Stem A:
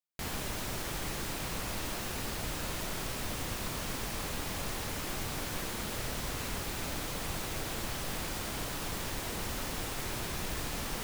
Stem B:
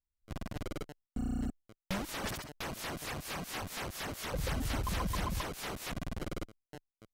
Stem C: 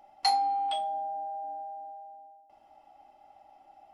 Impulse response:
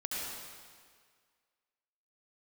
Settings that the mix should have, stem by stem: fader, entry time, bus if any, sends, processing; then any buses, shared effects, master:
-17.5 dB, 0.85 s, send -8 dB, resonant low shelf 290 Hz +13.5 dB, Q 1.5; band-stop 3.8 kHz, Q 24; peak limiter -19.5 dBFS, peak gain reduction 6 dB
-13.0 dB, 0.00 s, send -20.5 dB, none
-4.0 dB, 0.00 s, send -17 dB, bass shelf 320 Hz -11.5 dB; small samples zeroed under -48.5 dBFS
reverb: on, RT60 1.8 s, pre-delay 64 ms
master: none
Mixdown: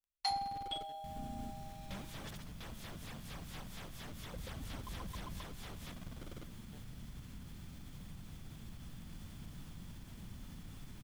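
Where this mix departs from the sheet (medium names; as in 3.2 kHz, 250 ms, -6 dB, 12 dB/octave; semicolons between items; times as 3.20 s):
stem A -17.5 dB -> -24.0 dB; stem C -4.0 dB -> -10.0 dB; master: extra peaking EQ 3.4 kHz +6.5 dB 0.21 oct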